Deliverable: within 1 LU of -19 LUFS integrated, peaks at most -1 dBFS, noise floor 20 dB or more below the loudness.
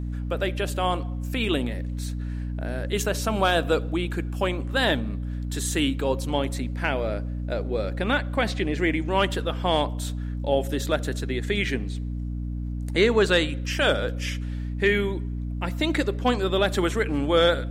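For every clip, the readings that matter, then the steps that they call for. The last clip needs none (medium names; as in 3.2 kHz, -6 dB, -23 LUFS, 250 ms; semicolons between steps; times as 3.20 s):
hum 60 Hz; highest harmonic 300 Hz; hum level -27 dBFS; loudness -25.5 LUFS; peak level -8.5 dBFS; loudness target -19.0 LUFS
-> hum notches 60/120/180/240/300 Hz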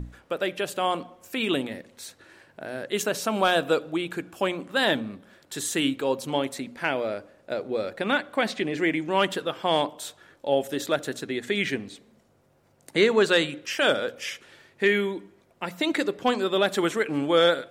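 hum not found; loudness -26.0 LUFS; peak level -9.0 dBFS; loudness target -19.0 LUFS
-> trim +7 dB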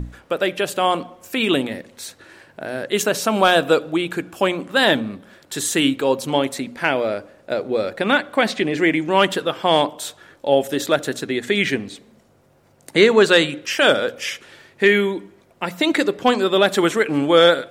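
loudness -19.0 LUFS; peak level -2.0 dBFS; noise floor -55 dBFS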